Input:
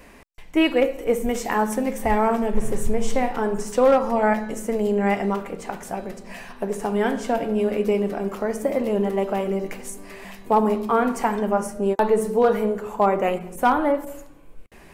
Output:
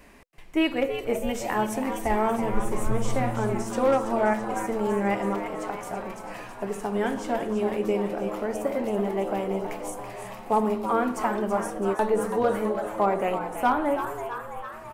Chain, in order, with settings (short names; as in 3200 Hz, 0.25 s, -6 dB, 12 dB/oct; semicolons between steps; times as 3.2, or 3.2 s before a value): notch 500 Hz, Q 13; frequency-shifting echo 0.33 s, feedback 64%, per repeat +110 Hz, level -9.5 dB; gain -4.5 dB